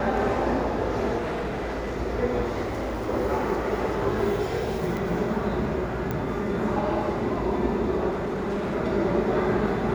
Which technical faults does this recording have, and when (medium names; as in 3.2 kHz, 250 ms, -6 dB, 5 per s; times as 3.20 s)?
1.17–1.96 s: clipped -26 dBFS
2.63–3.10 s: clipped -26 dBFS
4.97 s: pop
6.11 s: pop -16 dBFS
8.10–8.75 s: clipped -24.5 dBFS